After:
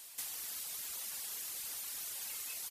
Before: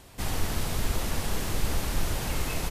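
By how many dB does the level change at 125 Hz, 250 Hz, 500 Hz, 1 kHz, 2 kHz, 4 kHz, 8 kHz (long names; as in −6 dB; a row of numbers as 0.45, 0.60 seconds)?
below −40 dB, −33.0 dB, −27.0 dB, −21.0 dB, −15.0 dB, −9.0 dB, −3.5 dB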